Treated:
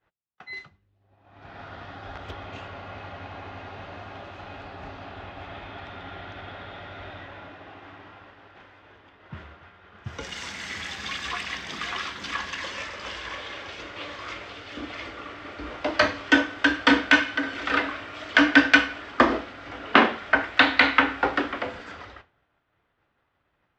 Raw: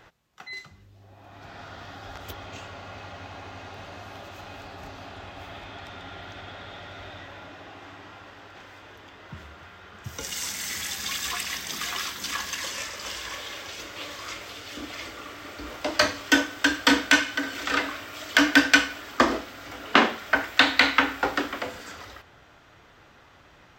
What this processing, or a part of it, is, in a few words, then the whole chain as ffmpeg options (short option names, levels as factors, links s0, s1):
hearing-loss simulation: -af "lowpass=3100,agate=range=0.0224:threshold=0.00891:ratio=3:detection=peak,volume=1.26"